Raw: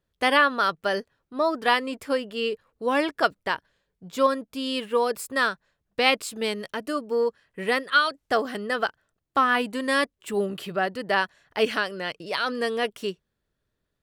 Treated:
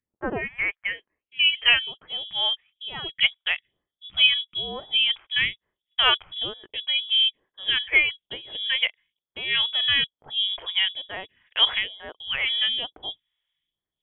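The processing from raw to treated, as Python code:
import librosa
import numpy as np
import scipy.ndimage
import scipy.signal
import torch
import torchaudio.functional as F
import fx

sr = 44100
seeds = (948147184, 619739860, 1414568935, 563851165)

y = fx.filter_sweep_highpass(x, sr, from_hz=2600.0, to_hz=220.0, start_s=0.43, end_s=2.41, q=1.6)
y = fx.freq_invert(y, sr, carrier_hz=3600)
y = fx.phaser_stages(y, sr, stages=2, low_hz=190.0, high_hz=2700.0, hz=1.1, feedback_pct=25)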